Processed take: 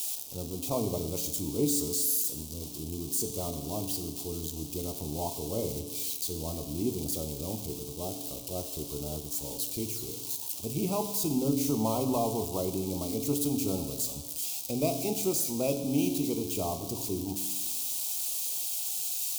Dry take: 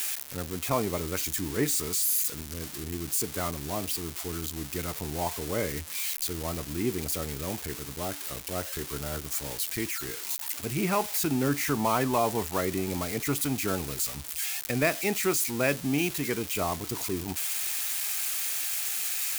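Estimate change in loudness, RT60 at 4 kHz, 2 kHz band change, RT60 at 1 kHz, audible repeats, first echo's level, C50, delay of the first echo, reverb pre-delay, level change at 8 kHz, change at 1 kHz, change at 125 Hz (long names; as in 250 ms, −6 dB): −2.0 dB, 1.2 s, −17.5 dB, 1.3 s, no echo audible, no echo audible, 9.0 dB, no echo audible, 9 ms, −1.5 dB, −6.0 dB, −1.5 dB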